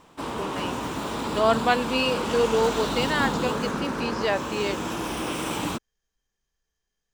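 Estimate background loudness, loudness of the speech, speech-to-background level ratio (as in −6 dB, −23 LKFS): −29.0 LKFS, −26.0 LKFS, 3.0 dB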